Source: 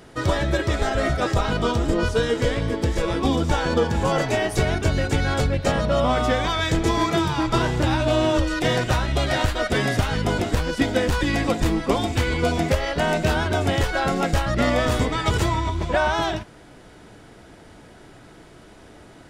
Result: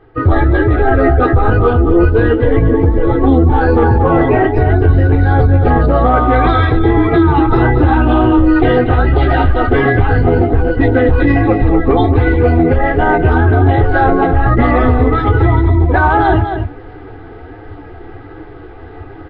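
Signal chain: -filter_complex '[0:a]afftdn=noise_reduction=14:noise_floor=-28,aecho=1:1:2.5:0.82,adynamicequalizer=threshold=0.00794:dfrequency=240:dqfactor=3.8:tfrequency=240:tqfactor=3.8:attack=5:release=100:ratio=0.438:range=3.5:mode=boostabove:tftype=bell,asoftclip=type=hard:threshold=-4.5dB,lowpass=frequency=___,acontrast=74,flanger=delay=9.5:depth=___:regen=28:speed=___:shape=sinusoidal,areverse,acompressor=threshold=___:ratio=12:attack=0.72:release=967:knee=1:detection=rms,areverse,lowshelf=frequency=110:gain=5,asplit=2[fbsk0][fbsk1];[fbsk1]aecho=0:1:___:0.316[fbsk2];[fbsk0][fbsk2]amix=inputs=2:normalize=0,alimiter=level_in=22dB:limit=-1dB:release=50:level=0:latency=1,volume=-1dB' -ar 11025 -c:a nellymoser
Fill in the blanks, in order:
1.9k, 2.4, 1.3, -23dB, 231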